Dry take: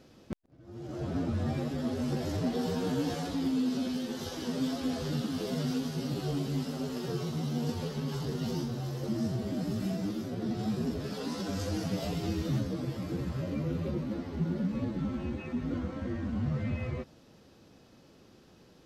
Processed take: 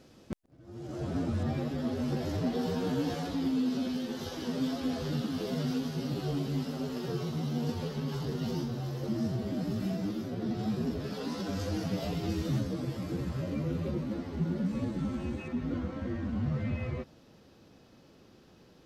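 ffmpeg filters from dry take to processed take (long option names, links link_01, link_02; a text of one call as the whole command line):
ffmpeg -i in.wav -af "asetnsamples=nb_out_samples=441:pad=0,asendcmd='1.43 equalizer g -5.5;12.29 equalizer g 1;14.66 equalizer g 8;15.48 equalizer g -3.5',equalizer=frequency=8500:width_type=o:width=1:gain=3" out.wav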